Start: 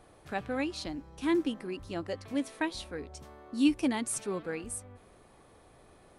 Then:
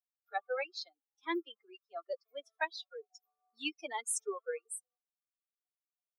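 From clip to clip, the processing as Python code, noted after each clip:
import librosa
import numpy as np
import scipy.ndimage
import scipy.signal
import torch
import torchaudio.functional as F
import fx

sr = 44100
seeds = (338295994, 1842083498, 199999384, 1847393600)

y = fx.bin_expand(x, sr, power=3.0)
y = scipy.signal.sosfilt(scipy.signal.butter(8, 390.0, 'highpass', fs=sr, output='sos'), y)
y = F.gain(torch.from_numpy(y), 3.0).numpy()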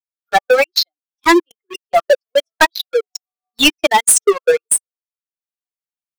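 y = fx.fade_in_head(x, sr, length_s=0.71)
y = fx.transient(y, sr, attack_db=10, sustain_db=-11)
y = fx.leveller(y, sr, passes=5)
y = F.gain(torch.from_numpy(y), 6.5).numpy()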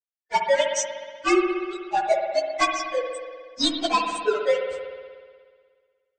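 y = fx.partial_stretch(x, sr, pct=113)
y = fx.brickwall_lowpass(y, sr, high_hz=8700.0)
y = fx.rev_spring(y, sr, rt60_s=1.8, pass_ms=(60,), chirp_ms=60, drr_db=3.0)
y = F.gain(torch.from_numpy(y), -6.5).numpy()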